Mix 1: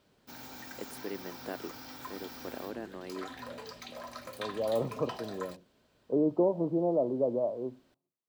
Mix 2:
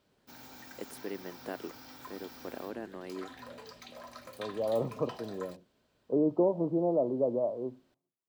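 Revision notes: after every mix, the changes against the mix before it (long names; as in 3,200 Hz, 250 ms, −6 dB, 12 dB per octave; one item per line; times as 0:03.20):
background −4.0 dB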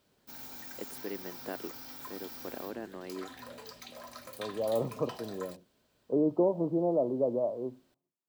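background: add high-shelf EQ 6,600 Hz +9.5 dB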